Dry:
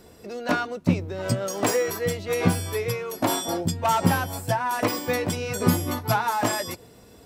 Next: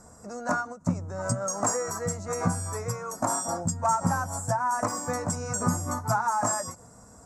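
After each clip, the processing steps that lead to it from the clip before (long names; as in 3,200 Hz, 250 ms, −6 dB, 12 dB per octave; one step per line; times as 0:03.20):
drawn EQ curve 230 Hz 0 dB, 380 Hz −12 dB, 590 Hz 0 dB, 1,300 Hz +5 dB, 3,200 Hz −26 dB, 7,100 Hz +11 dB, 15,000 Hz −19 dB
downward compressor 1.5 to 1, threshold −29 dBFS, peak gain reduction 6 dB
every ending faded ahead of time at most 210 dB per second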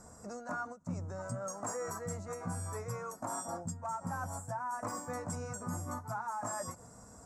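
dynamic equaliser 5,700 Hz, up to −6 dB, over −46 dBFS, Q 1.1
reversed playback
downward compressor, threshold −33 dBFS, peak gain reduction 13 dB
reversed playback
level −3 dB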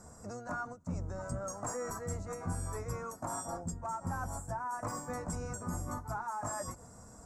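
sub-octave generator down 1 octave, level −2 dB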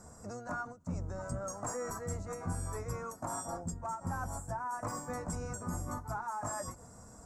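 every ending faded ahead of time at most 200 dB per second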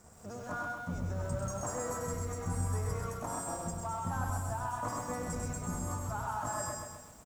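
dead-zone distortion −58 dBFS
single-tap delay 98 ms −6 dB
feedback echo at a low word length 130 ms, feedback 55%, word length 10 bits, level −4 dB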